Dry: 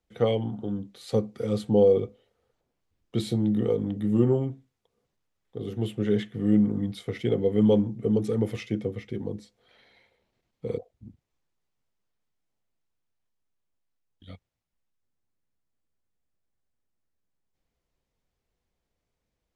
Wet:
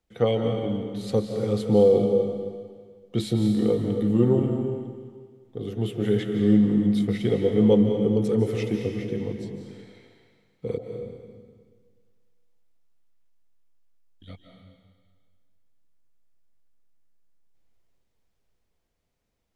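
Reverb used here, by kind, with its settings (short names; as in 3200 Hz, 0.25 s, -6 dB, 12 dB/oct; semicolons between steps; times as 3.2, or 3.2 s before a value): digital reverb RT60 1.7 s, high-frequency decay 1×, pre-delay 0.12 s, DRR 3.5 dB; gain +1.5 dB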